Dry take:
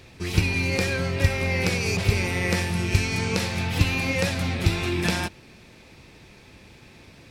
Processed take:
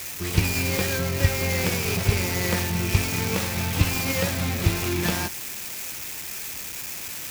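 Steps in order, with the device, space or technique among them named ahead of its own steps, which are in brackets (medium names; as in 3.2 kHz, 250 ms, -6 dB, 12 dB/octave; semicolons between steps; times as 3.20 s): budget class-D amplifier (dead-time distortion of 0.16 ms; zero-crossing glitches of -17 dBFS)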